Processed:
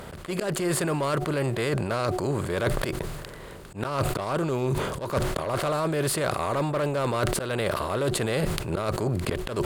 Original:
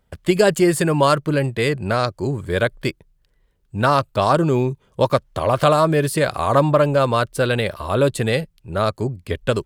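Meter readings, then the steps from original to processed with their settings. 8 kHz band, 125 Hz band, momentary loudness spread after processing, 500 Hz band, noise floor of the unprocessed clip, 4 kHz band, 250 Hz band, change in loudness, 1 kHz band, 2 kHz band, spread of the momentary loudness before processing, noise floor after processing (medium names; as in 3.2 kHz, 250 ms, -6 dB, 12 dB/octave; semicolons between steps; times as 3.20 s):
-1.5 dB, -6.5 dB, 5 LU, -8.5 dB, -64 dBFS, -6.5 dB, -7.5 dB, -8.0 dB, -9.5 dB, -7.5 dB, 8 LU, -41 dBFS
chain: spectral levelling over time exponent 0.6; in parallel at -7 dB: wavefolder -9.5 dBFS; on the sum: slow attack 196 ms; reverse; compression 10:1, threshold -24 dBFS, peak gain reduction 17 dB; reverse; de-hum 366.7 Hz, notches 2; decay stretcher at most 41 dB/s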